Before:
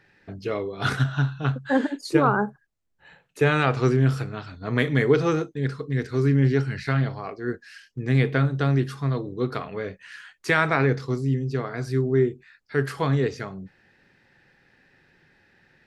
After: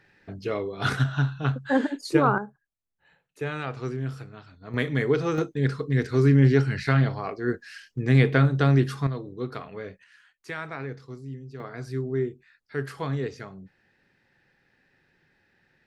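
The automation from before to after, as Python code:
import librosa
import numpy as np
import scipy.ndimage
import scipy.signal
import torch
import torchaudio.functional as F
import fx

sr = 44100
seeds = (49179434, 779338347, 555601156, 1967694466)

y = fx.gain(x, sr, db=fx.steps((0.0, -1.0), (2.38, -11.0), (4.74, -4.0), (5.38, 2.0), (9.07, -6.0), (10.04, -14.0), (11.6, -6.5)))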